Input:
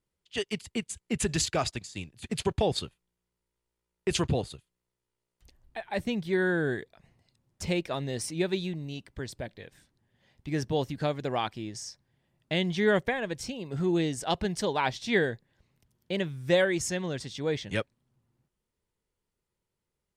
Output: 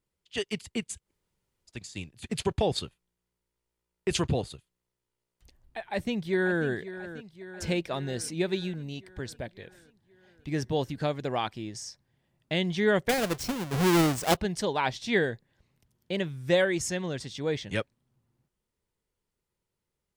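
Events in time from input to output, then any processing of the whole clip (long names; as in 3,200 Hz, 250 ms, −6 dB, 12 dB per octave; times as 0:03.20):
0:01.03–0:01.75: fill with room tone, crossfade 0.16 s
0:05.79–0:06.66: delay throw 540 ms, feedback 65%, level −13.5 dB
0:13.09–0:14.37: each half-wave held at its own peak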